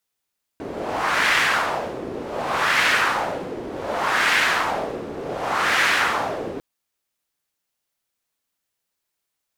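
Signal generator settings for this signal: wind-like swept noise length 6.00 s, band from 370 Hz, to 1.9 kHz, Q 1.8, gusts 4, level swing 13 dB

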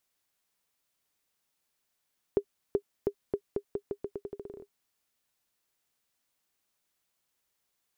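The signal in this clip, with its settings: bouncing ball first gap 0.38 s, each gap 0.84, 404 Hz, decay 73 ms -14 dBFS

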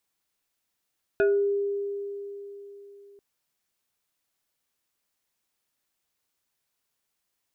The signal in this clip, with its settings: FM tone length 1.99 s, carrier 402 Hz, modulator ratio 2.61, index 0.92, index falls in 0.38 s exponential, decay 3.71 s, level -17.5 dB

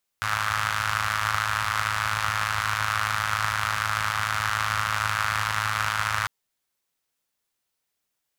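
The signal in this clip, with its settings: four-cylinder engine model, steady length 6.05 s, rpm 3200, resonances 90/1300 Hz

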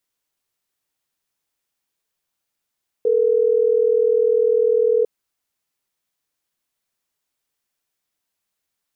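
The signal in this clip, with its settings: call progress tone ringback tone, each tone -16.5 dBFS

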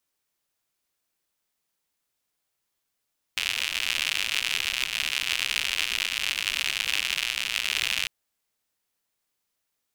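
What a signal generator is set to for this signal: rain from filtered ticks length 4.70 s, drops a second 120, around 2.7 kHz, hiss -23 dB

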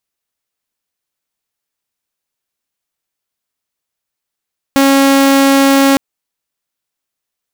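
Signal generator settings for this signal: tone saw 274 Hz -4 dBFS 1.21 s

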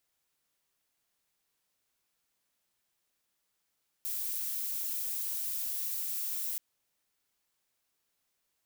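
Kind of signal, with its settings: noise violet, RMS -35 dBFS 2.53 s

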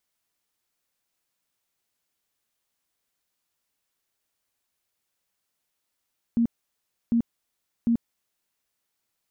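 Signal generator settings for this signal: tone bursts 233 Hz, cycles 20, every 0.75 s, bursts 3, -18 dBFS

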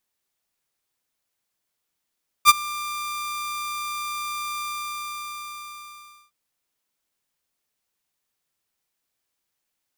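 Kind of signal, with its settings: ADSR saw 1.19 kHz, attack 45 ms, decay 26 ms, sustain -21.5 dB, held 2.15 s, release 1710 ms -4 dBFS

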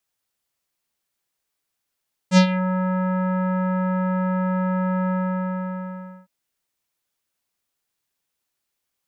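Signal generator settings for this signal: synth note square F#3 24 dB/octave, low-pass 1.5 kHz, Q 1.6, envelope 2.5 oct, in 0.30 s, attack 63 ms, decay 0.09 s, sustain -12 dB, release 1.17 s, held 2.79 s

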